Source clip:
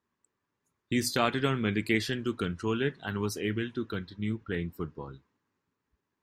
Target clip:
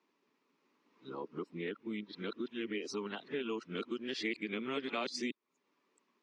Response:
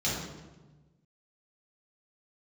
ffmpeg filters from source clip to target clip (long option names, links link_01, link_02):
-af "areverse,highpass=frequency=230:width=0.5412,highpass=frequency=230:width=1.3066,equalizer=frequency=780:width_type=q:width=4:gain=-3,equalizer=frequency=1600:width_type=q:width=4:gain=-8,equalizer=frequency=2400:width_type=q:width=4:gain=4,lowpass=frequency=5900:width=0.5412,lowpass=frequency=5900:width=1.3066,acompressor=threshold=-50dB:ratio=2.5,volume=7.5dB"